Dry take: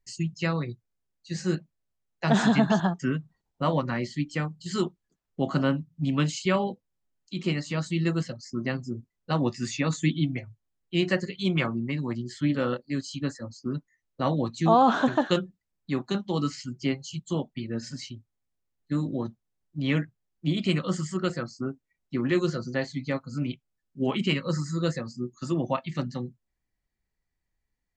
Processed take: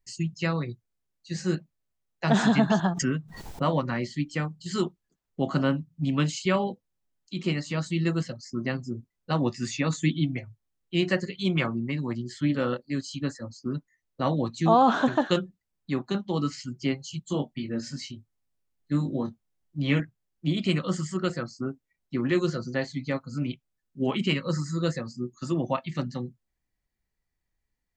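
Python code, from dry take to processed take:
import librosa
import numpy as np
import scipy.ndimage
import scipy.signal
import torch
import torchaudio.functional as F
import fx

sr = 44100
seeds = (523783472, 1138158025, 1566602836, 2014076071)

y = fx.pre_swell(x, sr, db_per_s=67.0, at=(2.86, 3.73))
y = fx.high_shelf(y, sr, hz=4300.0, db=-5.0, at=(15.94, 16.52))
y = fx.doubler(y, sr, ms=21.0, db=-6.0, at=(17.25, 20.0))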